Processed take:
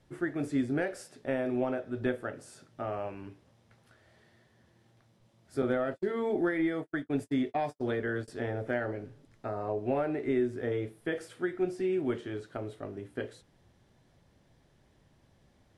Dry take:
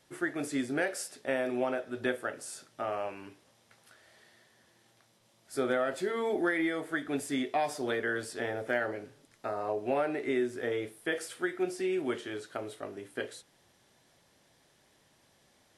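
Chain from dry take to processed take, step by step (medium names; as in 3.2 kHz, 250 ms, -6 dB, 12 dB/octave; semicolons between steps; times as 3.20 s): RIAA curve playback; 5.62–8.28 s: gate -31 dBFS, range -56 dB; treble shelf 5.3 kHz +6 dB; trim -3 dB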